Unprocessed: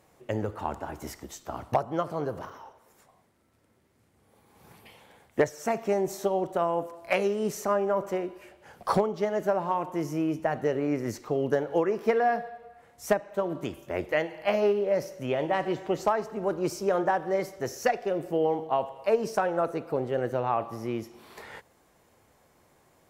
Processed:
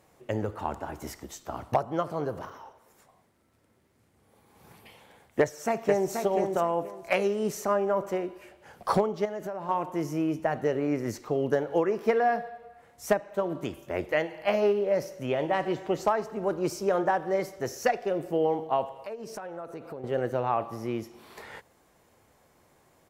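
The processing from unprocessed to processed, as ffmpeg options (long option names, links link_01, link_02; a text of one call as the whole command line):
ffmpeg -i in.wav -filter_complex "[0:a]asplit=2[link_01][link_02];[link_02]afade=type=in:start_time=5.4:duration=0.01,afade=type=out:start_time=6.12:duration=0.01,aecho=0:1:480|960|1440:0.562341|0.112468|0.0224937[link_03];[link_01][link_03]amix=inputs=2:normalize=0,asettb=1/sr,asplit=3[link_04][link_05][link_06];[link_04]atrim=end=9.254[link_07];[link_05]atrim=start=9.25:end=9.69,asetpts=PTS-STARTPTS,afade=type=in:duration=0.004:curve=qsin,afade=type=out:start_time=0.436:duration=0.004:curve=qsin,acompressor=threshold=-32dB:ratio=4:attack=3.2:release=140:knee=1:detection=peak[link_08];[link_06]atrim=start=9.686[link_09];[link_07][link_08]acrossfade=duration=0.004:curve1=hsin:curve2=qsin[link_10];[link_10][link_09]acrossfade=duration=0.004:curve1=qsin:curve2=hsin,asettb=1/sr,asplit=3[link_11][link_12][link_13];[link_11]atrim=end=18.924[link_14];[link_12]atrim=start=18.92:end=20.04,asetpts=PTS-STARTPTS,afade=type=in:duration=0.004:curve=qsin,afade=type=out:start_time=1.116:duration=0.004:curve=qsin,acompressor=threshold=-37dB:ratio=4:attack=3.2:release=140:knee=1:detection=peak[link_15];[link_13]atrim=start=20.036[link_16];[link_14][link_15]acrossfade=duration=0.004:curve1=hsin:curve2=qsin[link_17];[link_17][link_16]acrossfade=duration=0.004:curve1=qsin:curve2=hsin" out.wav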